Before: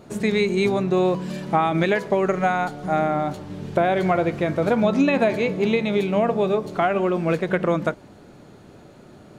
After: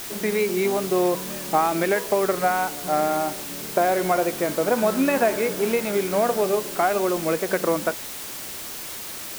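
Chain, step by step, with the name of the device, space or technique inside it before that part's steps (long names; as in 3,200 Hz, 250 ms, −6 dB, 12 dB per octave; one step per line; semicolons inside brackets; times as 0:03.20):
wax cylinder (band-pass filter 280–2,200 Hz; tape wow and flutter; white noise bed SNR 11 dB)
0:04.78–0:06.42: parametric band 1,500 Hz +5.5 dB 0.39 octaves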